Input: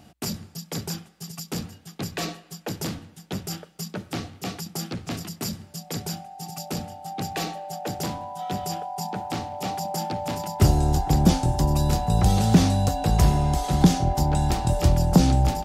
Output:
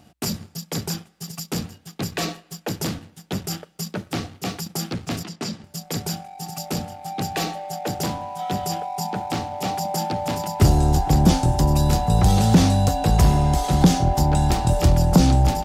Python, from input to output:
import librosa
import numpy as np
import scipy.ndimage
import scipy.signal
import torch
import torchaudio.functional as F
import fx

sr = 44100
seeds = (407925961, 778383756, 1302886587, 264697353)

y = fx.leveller(x, sr, passes=1)
y = fx.bandpass_edges(y, sr, low_hz=170.0, high_hz=5400.0, at=(5.23, 5.64))